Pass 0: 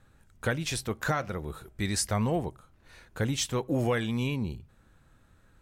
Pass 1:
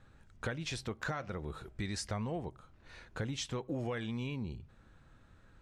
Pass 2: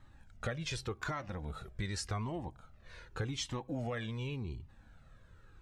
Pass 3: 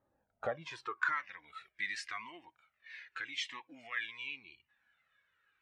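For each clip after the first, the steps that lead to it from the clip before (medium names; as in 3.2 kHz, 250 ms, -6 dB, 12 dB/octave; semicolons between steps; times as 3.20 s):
low-pass 6 kHz 12 dB/octave; compression 3:1, threshold -37 dBFS, peak gain reduction 11 dB
Shepard-style flanger falling 0.87 Hz; trim +4.5 dB
band-pass sweep 520 Hz -> 2.1 kHz, 0.19–1.28 s; spectral noise reduction 12 dB; trim +10 dB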